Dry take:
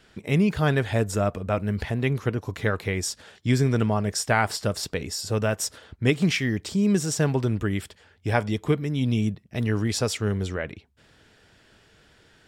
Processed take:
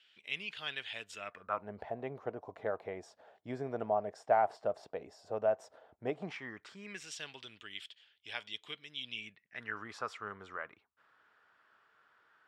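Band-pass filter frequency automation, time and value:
band-pass filter, Q 3.7
1.15 s 3 kHz
1.72 s 690 Hz
6.20 s 690 Hz
7.19 s 3.2 kHz
9.03 s 3.2 kHz
9.88 s 1.2 kHz

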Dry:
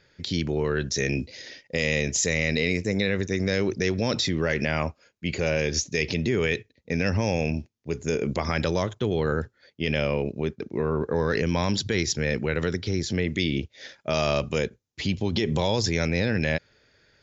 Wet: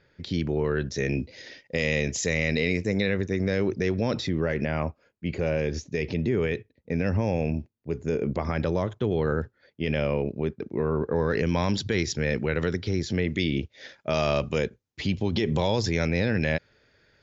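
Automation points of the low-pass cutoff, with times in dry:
low-pass 6 dB/octave
1.9 kHz
from 1.37 s 3.6 kHz
from 3.14 s 1.7 kHz
from 4.27 s 1.1 kHz
from 8.86 s 1.8 kHz
from 11.39 s 3.7 kHz

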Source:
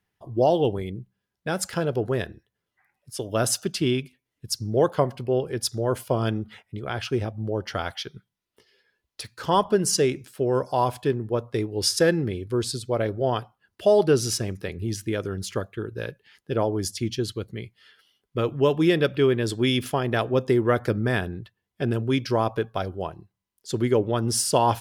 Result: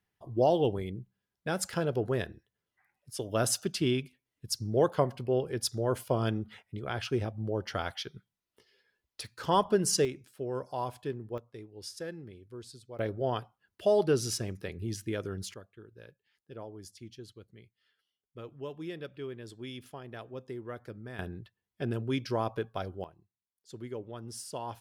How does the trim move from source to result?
-5 dB
from 10.05 s -12 dB
from 11.38 s -20 dB
from 12.99 s -7 dB
from 15.54 s -20 dB
from 21.19 s -8 dB
from 23.04 s -18.5 dB

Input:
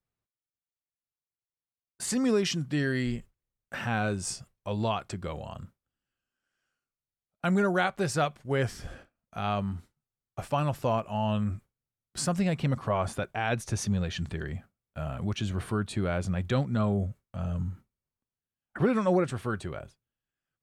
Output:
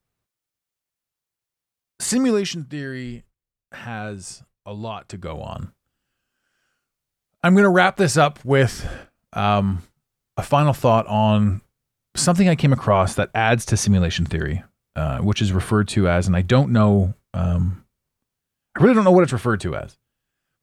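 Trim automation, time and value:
2.19 s +9 dB
2.73 s -1.5 dB
4.95 s -1.5 dB
5.64 s +11.5 dB

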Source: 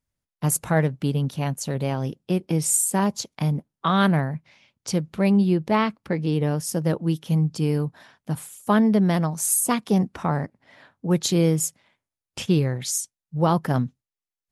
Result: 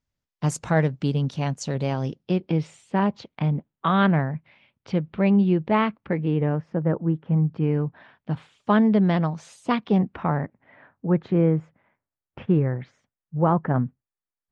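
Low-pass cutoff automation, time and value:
low-pass 24 dB/octave
2.03 s 6.7 kHz
2.72 s 3.2 kHz
5.97 s 3.2 kHz
7.06 s 1.6 kHz
8.44 s 3.8 kHz
9.71 s 3.8 kHz
11.12 s 1.9 kHz

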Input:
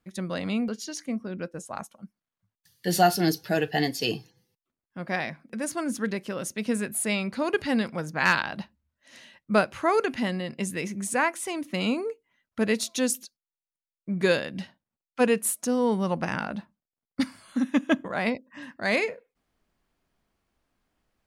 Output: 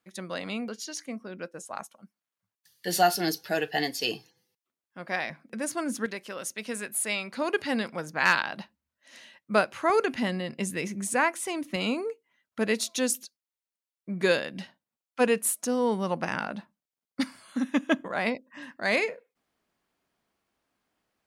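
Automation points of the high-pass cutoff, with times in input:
high-pass 6 dB/octave
480 Hz
from 5.30 s 200 Hz
from 6.06 s 770 Hz
from 7.34 s 330 Hz
from 9.90 s 110 Hz
from 11.76 s 250 Hz

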